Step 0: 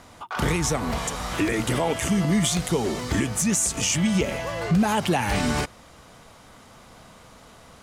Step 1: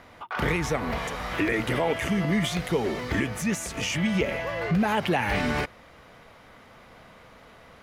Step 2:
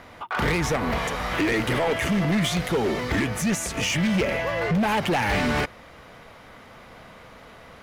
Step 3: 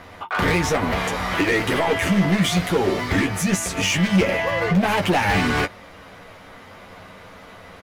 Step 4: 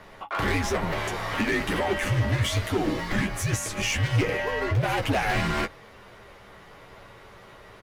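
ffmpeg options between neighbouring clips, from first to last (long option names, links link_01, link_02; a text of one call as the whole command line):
ffmpeg -i in.wav -af "equalizer=frequency=500:width_type=o:width=1:gain=4,equalizer=frequency=2000:width_type=o:width=1:gain=7,equalizer=frequency=8000:width_type=o:width=1:gain=-11,volume=-4dB" out.wav
ffmpeg -i in.wav -af "asoftclip=type=hard:threshold=-23.5dB,volume=4.5dB" out.wav
ffmpeg -i in.wav -af "aecho=1:1:11|21:0.596|0.355,volume=2dB" out.wav
ffmpeg -i in.wav -af "afreqshift=-75,volume=-5.5dB" out.wav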